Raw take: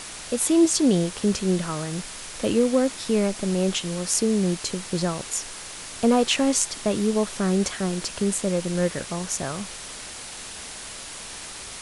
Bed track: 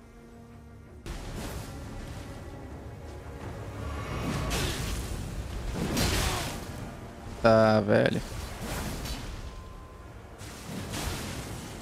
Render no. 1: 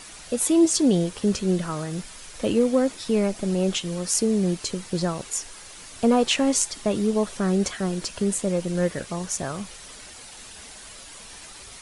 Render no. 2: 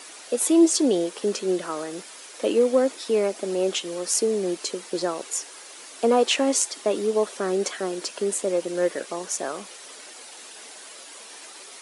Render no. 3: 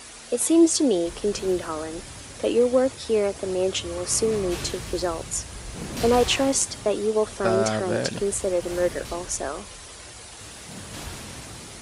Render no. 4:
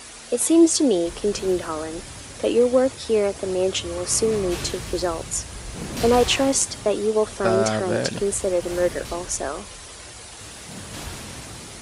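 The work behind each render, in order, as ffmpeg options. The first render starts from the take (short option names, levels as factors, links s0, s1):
-af "afftdn=nr=8:nf=-38"
-af "highpass=f=330:w=0.5412,highpass=f=330:w=1.3066,lowshelf=f=420:g=7"
-filter_complex "[1:a]volume=0.668[s0];[0:a][s0]amix=inputs=2:normalize=0"
-af "volume=1.26"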